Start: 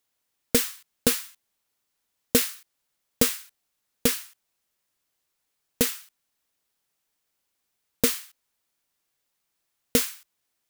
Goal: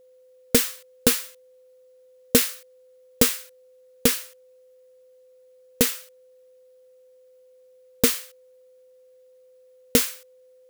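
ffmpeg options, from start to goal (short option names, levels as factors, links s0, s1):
-af "aeval=exprs='val(0)+0.00178*sin(2*PI*510*n/s)':c=same,volume=1.41"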